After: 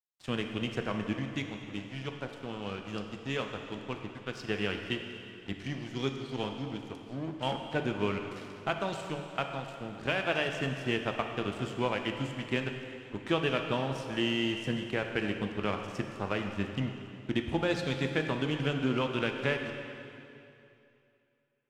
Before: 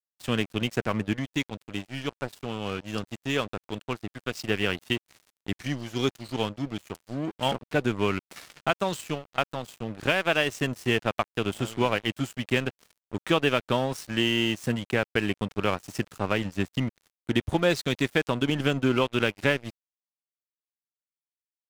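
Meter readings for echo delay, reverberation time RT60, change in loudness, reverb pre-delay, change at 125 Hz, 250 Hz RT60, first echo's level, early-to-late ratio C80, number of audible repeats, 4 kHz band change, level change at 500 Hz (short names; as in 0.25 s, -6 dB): none, 2.7 s, -5.5 dB, 6 ms, -4.5 dB, 2.7 s, none, 6.0 dB, none, -6.5 dB, -5.5 dB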